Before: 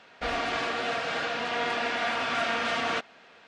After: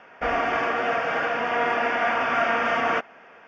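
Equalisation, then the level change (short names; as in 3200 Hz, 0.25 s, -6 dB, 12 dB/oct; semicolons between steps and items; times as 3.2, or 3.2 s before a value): running mean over 11 samples; low shelf 320 Hz -7 dB; +8.5 dB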